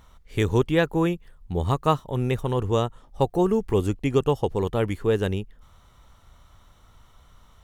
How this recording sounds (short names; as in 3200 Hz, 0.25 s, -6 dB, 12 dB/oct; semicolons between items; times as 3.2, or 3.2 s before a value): noise floor -55 dBFS; spectral tilt -6.5 dB/oct